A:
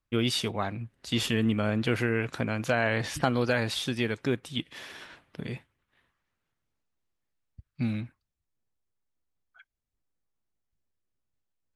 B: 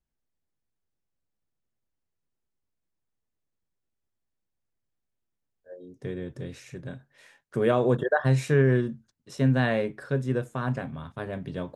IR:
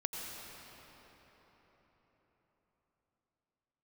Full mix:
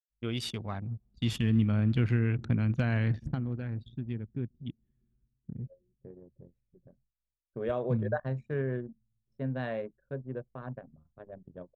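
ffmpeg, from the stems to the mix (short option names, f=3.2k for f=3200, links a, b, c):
-filter_complex "[0:a]asubboost=boost=10.5:cutoff=210,aeval=exprs='val(0)+0.00158*(sin(2*PI*50*n/s)+sin(2*PI*2*50*n/s)/2+sin(2*PI*3*50*n/s)/3+sin(2*PI*4*50*n/s)/4+sin(2*PI*5*50*n/s)/5)':c=same,adelay=100,volume=-8.5dB,afade=t=out:st=2.94:d=0.48:silence=0.334965,asplit=2[a][b];[b]volume=-19dB[c];[1:a]equalizer=f=590:w=2.7:g=5.5,volume=-12dB[d];[2:a]atrim=start_sample=2205[e];[c][e]afir=irnorm=-1:irlink=0[f];[a][d][f]amix=inputs=3:normalize=0,agate=range=-33dB:threshold=-56dB:ratio=3:detection=peak,anlmdn=0.631"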